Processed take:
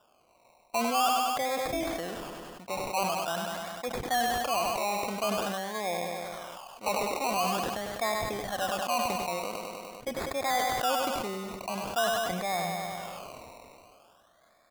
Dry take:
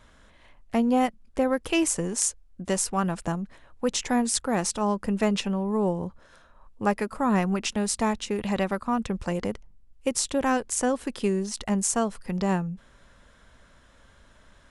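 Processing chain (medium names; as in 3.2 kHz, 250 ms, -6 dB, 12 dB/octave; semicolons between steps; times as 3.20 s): vowel filter a; peaking EQ 400 Hz -4.5 dB 0.3 oct; in parallel at +0.5 dB: peak limiter -31 dBFS, peak gain reduction 8 dB; on the sum: treble shelf 9.8 kHz -11 dB; decimation with a swept rate 21×, swing 60% 0.46 Hz; on a send: feedback delay 99 ms, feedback 55%, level -11.5 dB; on the sum: decay stretcher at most 20 dB/s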